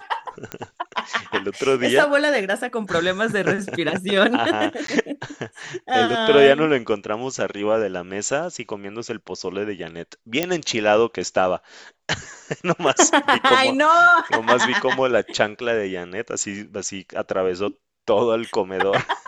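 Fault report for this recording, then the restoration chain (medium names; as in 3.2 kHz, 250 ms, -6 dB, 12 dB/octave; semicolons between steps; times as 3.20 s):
0.52 s: pop -13 dBFS
4.87–4.88 s: dropout 13 ms
10.43 s: pop -5 dBFS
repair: de-click; interpolate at 4.87 s, 13 ms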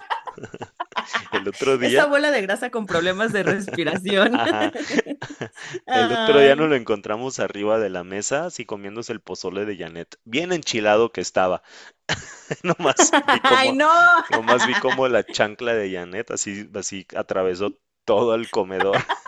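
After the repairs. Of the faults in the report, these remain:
nothing left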